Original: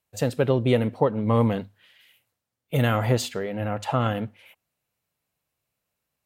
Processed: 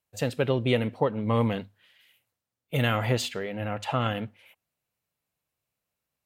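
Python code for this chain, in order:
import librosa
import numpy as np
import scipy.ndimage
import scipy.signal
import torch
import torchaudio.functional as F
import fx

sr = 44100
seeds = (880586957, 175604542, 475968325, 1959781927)

y = fx.dynamic_eq(x, sr, hz=2700.0, q=1.0, threshold_db=-45.0, ratio=4.0, max_db=7)
y = y * librosa.db_to_amplitude(-4.0)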